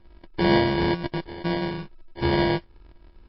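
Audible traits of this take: a buzz of ramps at a fixed pitch in blocks of 128 samples; phasing stages 8, 2.1 Hz, lowest notch 780–1600 Hz; aliases and images of a low sample rate 1.3 kHz, jitter 0%; MP3

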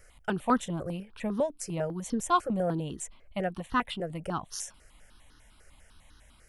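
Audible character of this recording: notches that jump at a steady rate 10 Hz 970–2300 Hz

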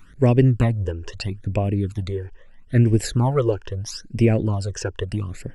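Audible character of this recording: phasing stages 12, 0.77 Hz, lowest notch 200–1300 Hz

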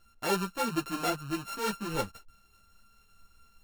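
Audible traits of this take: a buzz of ramps at a fixed pitch in blocks of 32 samples; tremolo saw up 4.6 Hz, depth 30%; a shimmering, thickened sound

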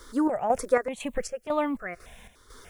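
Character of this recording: a quantiser's noise floor 12-bit, dither triangular; chopped level 2 Hz, depth 60%, duty 55%; notches that jump at a steady rate 3.4 Hz 700–1600 Hz

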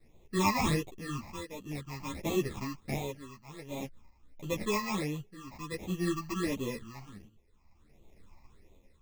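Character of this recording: aliases and images of a low sample rate 1.5 kHz, jitter 0%; phasing stages 8, 1.4 Hz, lowest notch 440–1600 Hz; tremolo triangle 0.51 Hz, depth 85%; a shimmering, thickened sound

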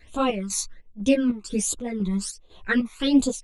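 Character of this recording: phasing stages 12, 1.3 Hz, lowest notch 510–1900 Hz; chopped level 2 Hz, depth 65%, duty 60%; a shimmering, thickened sound

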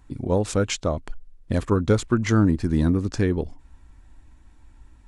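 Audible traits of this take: noise floor -52 dBFS; spectral tilt -7.0 dB/octave

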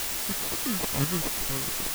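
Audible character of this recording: phasing stages 2, 1.9 Hz, lowest notch 580–1700 Hz; aliases and images of a low sample rate 1.5 kHz; chopped level 1.2 Hz, depth 65%, duty 25%; a quantiser's noise floor 6-bit, dither triangular

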